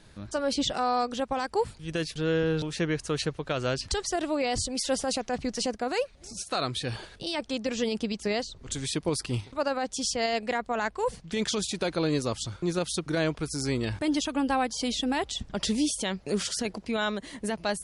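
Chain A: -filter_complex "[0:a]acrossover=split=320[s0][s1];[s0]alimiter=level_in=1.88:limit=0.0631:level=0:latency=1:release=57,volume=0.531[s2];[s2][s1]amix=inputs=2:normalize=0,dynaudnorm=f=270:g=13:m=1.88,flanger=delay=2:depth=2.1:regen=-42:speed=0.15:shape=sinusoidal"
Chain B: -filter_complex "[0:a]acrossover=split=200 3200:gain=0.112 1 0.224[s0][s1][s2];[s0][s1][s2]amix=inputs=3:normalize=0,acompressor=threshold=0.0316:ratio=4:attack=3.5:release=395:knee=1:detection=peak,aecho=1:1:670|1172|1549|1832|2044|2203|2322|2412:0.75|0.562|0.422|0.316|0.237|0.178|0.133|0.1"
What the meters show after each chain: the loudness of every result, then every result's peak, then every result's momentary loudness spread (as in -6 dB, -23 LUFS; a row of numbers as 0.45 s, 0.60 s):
-29.0 LUFS, -33.5 LUFS; -13.0 dBFS, -18.5 dBFS; 7 LU, 2 LU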